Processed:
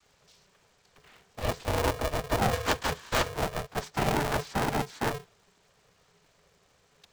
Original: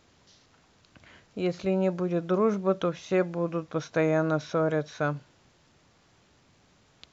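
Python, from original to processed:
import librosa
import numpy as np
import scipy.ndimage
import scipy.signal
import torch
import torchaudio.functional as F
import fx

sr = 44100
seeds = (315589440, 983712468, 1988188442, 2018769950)

y = fx.sample_sort(x, sr, block=32, at=(2.52, 3.29))
y = fx.noise_vocoder(y, sr, seeds[0], bands=16)
y = y * np.sign(np.sin(2.0 * np.pi * 290.0 * np.arange(len(y)) / sr))
y = y * librosa.db_to_amplitude(-2.0)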